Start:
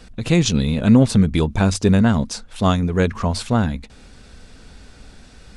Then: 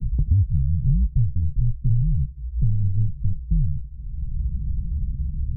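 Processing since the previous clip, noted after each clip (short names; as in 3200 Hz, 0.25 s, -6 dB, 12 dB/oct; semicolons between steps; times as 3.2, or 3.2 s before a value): frequency shift -75 Hz; inverse Chebyshev band-stop 730–9100 Hz, stop band 80 dB; three-band squash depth 100%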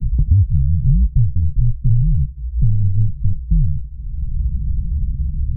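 low shelf 330 Hz +6 dB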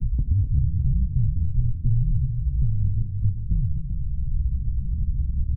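compressor 2.5:1, threshold -19 dBFS, peak gain reduction 7.5 dB; tapped delay 0.249/0.261/0.278/0.388/0.658 s -10/-15.5/-15/-7.5/-18.5 dB; on a send at -11.5 dB: reverb RT60 0.45 s, pre-delay 3 ms; on the sum: gain -2.5 dB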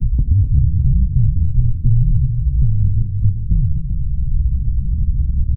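echo 94 ms -22.5 dB; gain +7.5 dB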